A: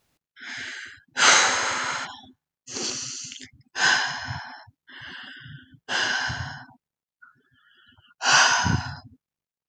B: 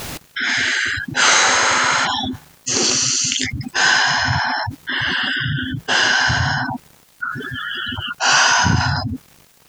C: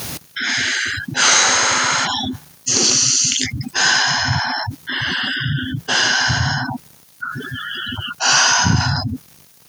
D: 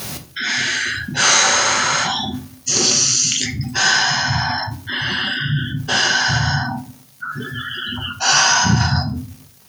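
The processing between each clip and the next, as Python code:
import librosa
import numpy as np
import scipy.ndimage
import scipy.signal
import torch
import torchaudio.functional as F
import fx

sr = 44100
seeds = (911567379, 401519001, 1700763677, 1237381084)

y1 = fx.env_flatten(x, sr, amount_pct=70)
y1 = F.gain(torch.from_numpy(y1), 1.5).numpy()
y2 = scipy.signal.sosfilt(scipy.signal.butter(2, 85.0, 'highpass', fs=sr, output='sos'), y1)
y2 = fx.bass_treble(y2, sr, bass_db=5, treble_db=7)
y2 = fx.notch(y2, sr, hz=7600.0, q=7.5)
y2 = F.gain(torch.from_numpy(y2), -2.0).numpy()
y3 = fx.room_shoebox(y2, sr, seeds[0], volume_m3=310.0, walls='furnished', distance_m=1.1)
y3 = F.gain(torch.from_numpy(y3), -1.5).numpy()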